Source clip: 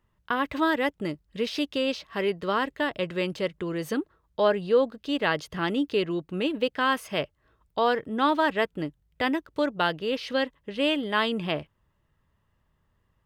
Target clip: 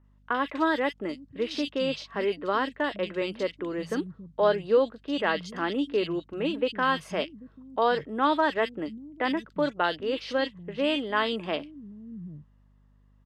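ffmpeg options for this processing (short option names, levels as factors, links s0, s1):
-filter_complex "[0:a]highpass=130,lowpass=6900,acrossover=split=190|2500[s0][s1][s2];[s2]adelay=40[s3];[s0]adelay=790[s4];[s4][s1][s3]amix=inputs=3:normalize=0,aeval=exprs='val(0)+0.00112*(sin(2*PI*50*n/s)+sin(2*PI*2*50*n/s)/2+sin(2*PI*3*50*n/s)/3+sin(2*PI*4*50*n/s)/4+sin(2*PI*5*50*n/s)/5)':c=same"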